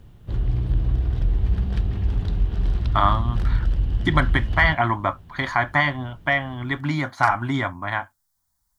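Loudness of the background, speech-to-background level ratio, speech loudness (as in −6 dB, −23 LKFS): −25.0 LKFS, 2.0 dB, −23.0 LKFS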